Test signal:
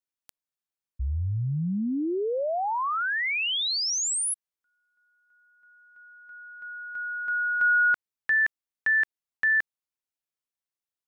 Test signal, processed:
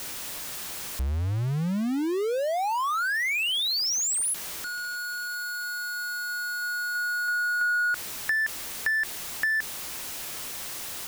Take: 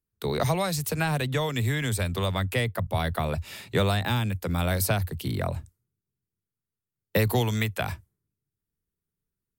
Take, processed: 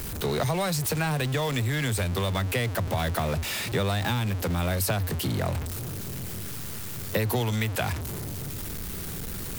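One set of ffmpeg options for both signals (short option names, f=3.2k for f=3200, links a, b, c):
-af "aeval=exprs='val(0)+0.5*0.0447*sgn(val(0))':c=same,acompressor=threshold=-29dB:ratio=2.5:attack=80:release=43"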